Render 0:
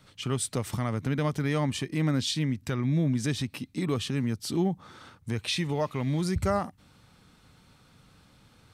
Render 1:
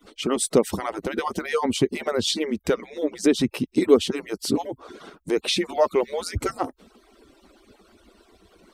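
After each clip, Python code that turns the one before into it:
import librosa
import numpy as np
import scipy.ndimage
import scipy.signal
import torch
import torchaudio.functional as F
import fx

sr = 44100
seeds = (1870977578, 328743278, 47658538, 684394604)

y = fx.hpss_only(x, sr, part='percussive')
y = fx.peak_eq(y, sr, hz=410.0, db=11.5, octaves=1.5)
y = fx.notch(y, sr, hz=1700.0, q=20.0)
y = y * 10.0 ** (6.0 / 20.0)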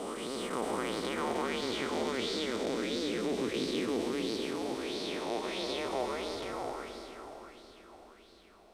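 y = fx.spec_blur(x, sr, span_ms=1220.0)
y = fx.echo_feedback(y, sr, ms=449, feedback_pct=58, wet_db=-14)
y = fx.bell_lfo(y, sr, hz=1.5, low_hz=710.0, high_hz=4500.0, db=11)
y = y * 10.0 ** (-3.0 / 20.0)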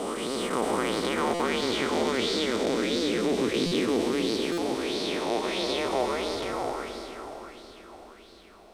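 y = fx.buffer_glitch(x, sr, at_s=(1.34, 3.66, 4.52), block=256, repeats=9)
y = y * 10.0 ** (7.0 / 20.0)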